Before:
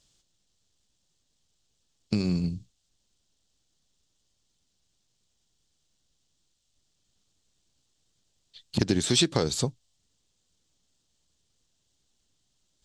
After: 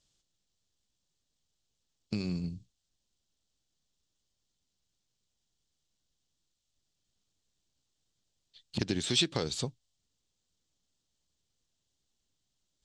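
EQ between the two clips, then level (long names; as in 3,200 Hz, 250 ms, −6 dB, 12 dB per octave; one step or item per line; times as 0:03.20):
low-pass filter 9,600 Hz
dynamic equaliser 2,900 Hz, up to +6 dB, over −43 dBFS, Q 1.1
−7.5 dB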